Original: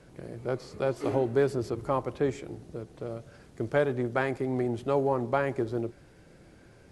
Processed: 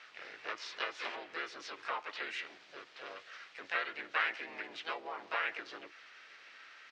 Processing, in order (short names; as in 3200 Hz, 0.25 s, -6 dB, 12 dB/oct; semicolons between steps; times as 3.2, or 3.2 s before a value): high shelf 3500 Hz -6 dB; compressor 8:1, threshold -30 dBFS, peak gain reduction 10.5 dB; Butterworth band-pass 3200 Hz, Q 0.88; air absorption 140 m; harmoniser -3 st 0 dB, +3 st 0 dB; gain +12 dB